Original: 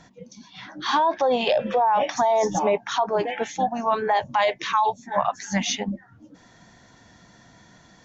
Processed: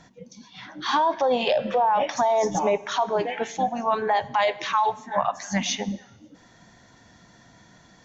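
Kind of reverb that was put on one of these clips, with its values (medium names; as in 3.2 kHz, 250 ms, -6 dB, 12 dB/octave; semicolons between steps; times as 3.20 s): Schroeder reverb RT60 1.2 s, combs from 33 ms, DRR 17.5 dB; trim -1 dB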